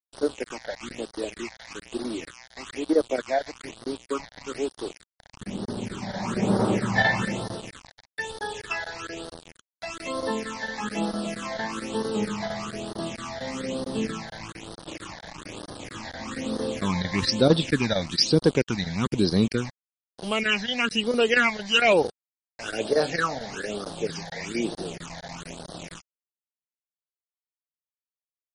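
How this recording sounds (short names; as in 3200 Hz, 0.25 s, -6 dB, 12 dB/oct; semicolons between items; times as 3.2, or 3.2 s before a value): chopped level 4.4 Hz, depth 65%, duty 90%; a quantiser's noise floor 6-bit, dither none; phasing stages 8, 1.1 Hz, lowest notch 340–2400 Hz; MP3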